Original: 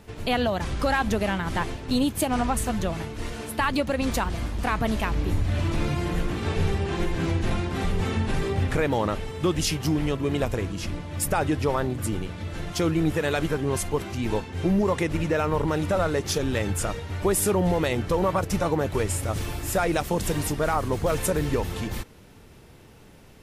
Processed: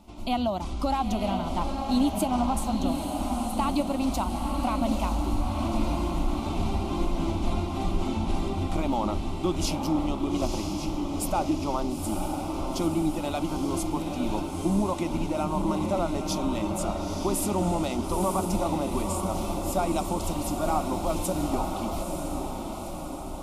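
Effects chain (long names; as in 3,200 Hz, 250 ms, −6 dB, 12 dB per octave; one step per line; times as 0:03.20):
high-shelf EQ 4,400 Hz −6.5 dB
phaser with its sweep stopped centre 460 Hz, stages 6
on a send: feedback delay with all-pass diffusion 928 ms, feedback 59%, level −4.5 dB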